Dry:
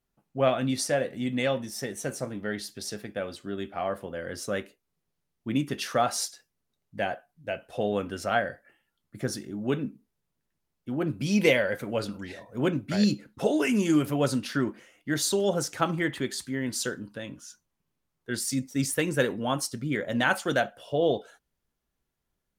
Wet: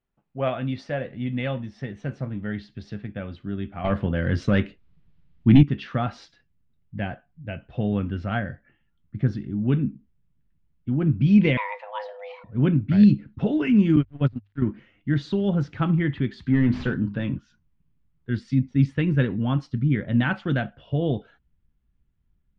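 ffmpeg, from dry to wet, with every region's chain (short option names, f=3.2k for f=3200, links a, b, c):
-filter_complex "[0:a]asettb=1/sr,asplit=3[a][b][c];[a]atrim=end=3.844[d];[b]atrim=start=3.84:end=5.63,asetpts=PTS-STARTPTS,afade=t=in:d=0.004:c=qsin,afade=t=out:st=1.786:d=0.004:c=qsin,highshelf=f=5.2k:g=9.5,aeval=exprs='0.211*sin(PI/2*2*val(0)/0.211)':c=same[e];[c]atrim=start=5.626[f];[d][e]acrossfade=d=0.004:c1=hsin:c2=qsin[g];[g][f]acrossfade=d=0.004:c1=qsin:c2=hsin,asettb=1/sr,asplit=3[h][i][j];[h]atrim=end=11.574[k];[i]atrim=start=11.57:end=12.44,asetpts=PTS-STARTPTS,afade=t=in:d=0.004:c=qsin,afade=t=out:st=0.866:d=0.004:c=qsin,lowshelf=f=120:t=q:w=3:g=9.5,afreqshift=410[l];[j]atrim=start=12.436[m];[k][l]acrossfade=d=0.004:c1=hsin:c2=qsin[n];[n][m]acrossfade=d=0.004:c1=qsin:c2=hsin,asettb=1/sr,asplit=3[o][p][q];[o]atrim=end=13.964[r];[p]atrim=start=13.96:end=14.62,asetpts=PTS-STARTPTS,afade=t=in:d=0.004:c=qsin,afade=t=out:st=0.656:d=0.004:c=qsin,agate=range=-24dB:threshold=-24dB:ratio=16:release=100:detection=peak,aeval=exprs='sgn(val(0))*max(abs(val(0))-0.00141,0)':c=same,bandreject=f=50:t=h:w=6,bandreject=f=100:t=h:w=6[s];[q]atrim=start=14.616[t];[r][s]acrossfade=d=0.004:c1=hsin:c2=qsin[u];[u][t]acrossfade=d=0.004:c1=qsin:c2=hsin,asettb=1/sr,asplit=3[v][w][x];[v]atrim=end=16.464[y];[w]atrim=start=16.46:end=17.38,asetpts=PTS-STARTPTS,afade=t=in:d=0.004:c=qsin,afade=t=out:st=0.916:d=0.004:c=qsin,bass=f=250:g=6,treble=f=4k:g=9,asplit=2[z][aa];[aa]highpass=f=720:p=1,volume=20dB,asoftclip=type=tanh:threshold=-11.5dB[ab];[z][ab]amix=inputs=2:normalize=0,lowpass=f=1.1k:p=1,volume=-6dB,bandreject=f=50:t=h:w=6,bandreject=f=100:t=h:w=6,bandreject=f=150:t=h:w=6,bandreject=f=200:t=h:w=6,bandreject=f=250:t=h:w=6,bandreject=f=300:t=h:w=6,bandreject=f=350:t=h:w=6,bandreject=f=400:t=h:w=6[ac];[x]atrim=start=17.376[ad];[y][ac]acrossfade=d=0.004:c1=hsin:c2=qsin[ae];[ae][ad]acrossfade=d=0.004:c1=qsin:c2=hsin,lowpass=f=3.3k:w=0.5412,lowpass=f=3.3k:w=1.3066,asubboost=boost=8.5:cutoff=180,volume=-1.5dB"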